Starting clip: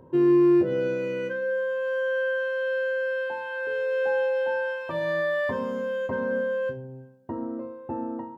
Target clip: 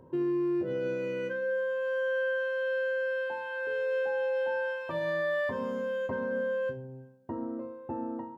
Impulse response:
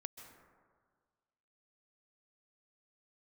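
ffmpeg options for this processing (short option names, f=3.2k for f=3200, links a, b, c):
-af "alimiter=limit=-20.5dB:level=0:latency=1:release=158,volume=-3.5dB"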